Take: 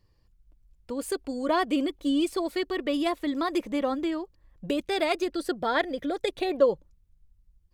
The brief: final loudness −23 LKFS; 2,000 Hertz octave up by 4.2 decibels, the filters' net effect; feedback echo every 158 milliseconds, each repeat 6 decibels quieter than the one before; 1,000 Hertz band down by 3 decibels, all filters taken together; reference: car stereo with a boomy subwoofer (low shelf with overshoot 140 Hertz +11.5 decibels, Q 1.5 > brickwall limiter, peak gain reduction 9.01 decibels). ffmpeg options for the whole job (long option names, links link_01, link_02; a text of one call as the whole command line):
ffmpeg -i in.wav -af "lowshelf=frequency=140:width_type=q:width=1.5:gain=11.5,equalizer=frequency=1000:width_type=o:gain=-5.5,equalizer=frequency=2000:width_type=o:gain=6.5,aecho=1:1:158|316|474|632|790|948:0.501|0.251|0.125|0.0626|0.0313|0.0157,volume=8dB,alimiter=limit=-12.5dB:level=0:latency=1" out.wav